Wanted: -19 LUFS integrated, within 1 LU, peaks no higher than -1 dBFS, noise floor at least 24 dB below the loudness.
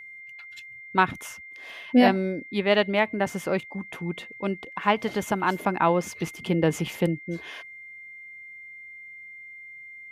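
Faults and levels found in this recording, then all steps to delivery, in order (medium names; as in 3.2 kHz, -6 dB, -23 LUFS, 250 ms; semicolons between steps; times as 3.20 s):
steady tone 2.1 kHz; tone level -41 dBFS; loudness -25.5 LUFS; peak level -6.5 dBFS; loudness target -19.0 LUFS
-> band-stop 2.1 kHz, Q 30; trim +6.5 dB; peak limiter -1 dBFS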